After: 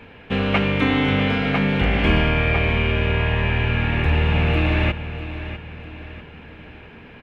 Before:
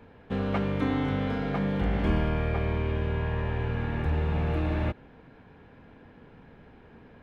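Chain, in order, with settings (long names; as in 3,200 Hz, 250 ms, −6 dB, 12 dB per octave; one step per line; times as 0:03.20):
parametric band 2,600 Hz +13.5 dB 0.95 octaves
repeating echo 648 ms, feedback 43%, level −12.5 dB
level +7 dB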